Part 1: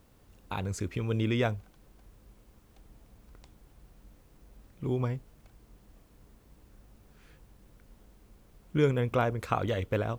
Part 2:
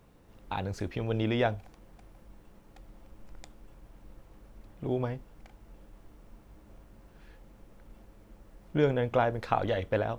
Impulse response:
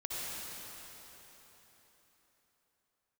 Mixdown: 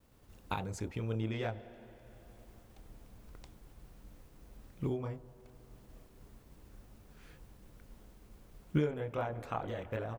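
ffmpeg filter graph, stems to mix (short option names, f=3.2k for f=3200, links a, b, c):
-filter_complex "[0:a]volume=1dB[a];[1:a]afwtdn=0.00891,adelay=27,volume=-13.5dB,asplit=3[b][c][d];[c]volume=-13dB[e];[d]apad=whole_len=449110[f];[a][f]sidechaincompress=threshold=-50dB:ratio=10:attack=38:release=838[g];[2:a]atrim=start_sample=2205[h];[e][h]afir=irnorm=-1:irlink=0[i];[g][b][i]amix=inputs=3:normalize=0,agate=range=-33dB:threshold=-55dB:ratio=3:detection=peak"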